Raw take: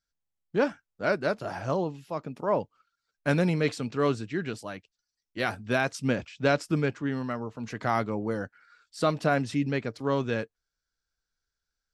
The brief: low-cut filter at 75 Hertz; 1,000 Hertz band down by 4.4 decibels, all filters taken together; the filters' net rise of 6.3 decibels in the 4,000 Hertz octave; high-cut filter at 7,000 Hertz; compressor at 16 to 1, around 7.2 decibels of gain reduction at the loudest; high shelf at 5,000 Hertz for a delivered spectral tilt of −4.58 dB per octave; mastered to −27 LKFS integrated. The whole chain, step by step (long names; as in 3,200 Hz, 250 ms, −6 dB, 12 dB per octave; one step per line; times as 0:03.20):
high-pass filter 75 Hz
low-pass filter 7,000 Hz
parametric band 1,000 Hz −7 dB
parametric band 4,000 Hz +6.5 dB
high-shelf EQ 5,000 Hz +4.5 dB
downward compressor 16 to 1, threshold −27 dBFS
level +7.5 dB